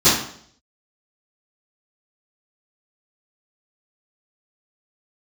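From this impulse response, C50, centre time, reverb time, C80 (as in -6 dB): 3.0 dB, 48 ms, 0.60 s, 7.5 dB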